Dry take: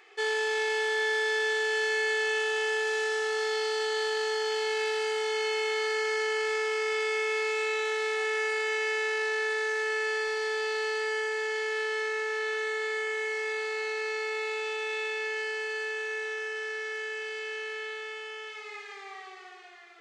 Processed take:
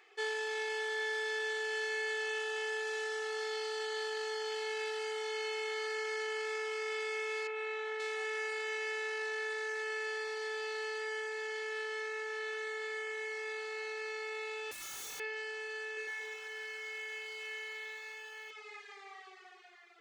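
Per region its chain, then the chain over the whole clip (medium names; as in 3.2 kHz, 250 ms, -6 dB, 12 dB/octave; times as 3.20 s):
7.47–8.00 s: high-pass 75 Hz + tone controls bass -2 dB, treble -14 dB
14.71–15.20 s: elliptic high-pass 1.5 kHz + integer overflow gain 32.5 dB
15.94–18.51 s: flutter echo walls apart 5.2 m, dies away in 0.34 s + bit-crushed delay 132 ms, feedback 55%, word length 10-bit, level -4 dB
whole clip: reverb removal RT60 0.61 s; bass shelf 96 Hz -10.5 dB; trim -6 dB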